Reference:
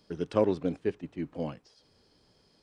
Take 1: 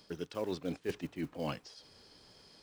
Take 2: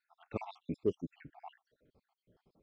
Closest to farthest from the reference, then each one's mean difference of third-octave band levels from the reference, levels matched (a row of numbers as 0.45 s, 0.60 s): 1, 2; 8.5 dB, 12.0 dB